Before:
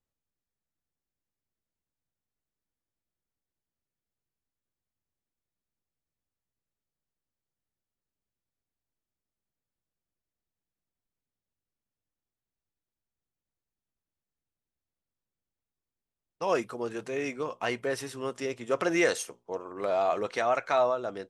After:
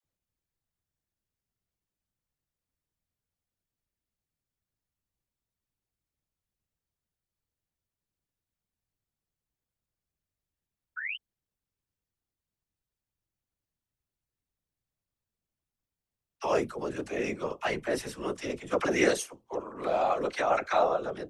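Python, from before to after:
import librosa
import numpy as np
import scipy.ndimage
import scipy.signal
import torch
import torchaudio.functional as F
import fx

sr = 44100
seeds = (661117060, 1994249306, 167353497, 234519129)

y = fx.spec_paint(x, sr, seeds[0], shape='rise', start_s=10.96, length_s=0.21, low_hz=1400.0, high_hz=3100.0, level_db=-36.0)
y = fx.whisperise(y, sr, seeds[1])
y = fx.dispersion(y, sr, late='lows', ms=42.0, hz=570.0)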